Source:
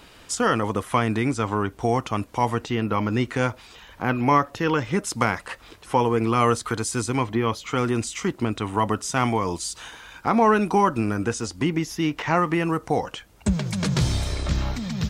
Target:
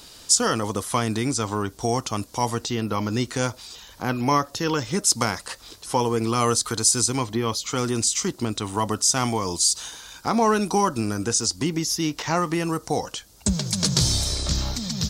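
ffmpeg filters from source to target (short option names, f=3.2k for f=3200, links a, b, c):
-af "highshelf=f=3.4k:t=q:w=1.5:g=11,volume=-1.5dB"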